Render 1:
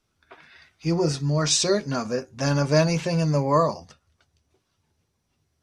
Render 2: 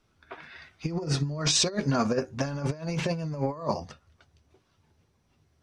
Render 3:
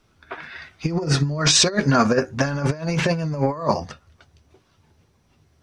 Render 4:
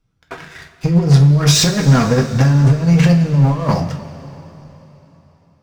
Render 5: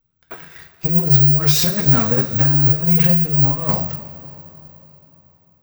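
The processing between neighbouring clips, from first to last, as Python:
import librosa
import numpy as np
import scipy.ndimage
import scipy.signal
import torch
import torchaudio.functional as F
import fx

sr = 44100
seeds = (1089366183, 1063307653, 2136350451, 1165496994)

y1 = fx.high_shelf(x, sr, hz=5000.0, db=-10.0)
y1 = fx.over_compress(y1, sr, threshold_db=-27.0, ratio=-0.5)
y2 = fx.dynamic_eq(y1, sr, hz=1600.0, q=1.8, threshold_db=-49.0, ratio=4.0, max_db=6)
y2 = y2 * 10.0 ** (7.5 / 20.0)
y3 = fx.bass_treble(y2, sr, bass_db=12, treble_db=1)
y3 = fx.leveller(y3, sr, passes=3)
y3 = fx.rev_double_slope(y3, sr, seeds[0], early_s=0.26, late_s=3.7, knee_db=-18, drr_db=2.0)
y3 = y3 * 10.0 ** (-9.5 / 20.0)
y4 = (np.kron(scipy.signal.resample_poly(y3, 1, 2), np.eye(2)[0]) * 2)[:len(y3)]
y4 = y4 * 10.0 ** (-6.0 / 20.0)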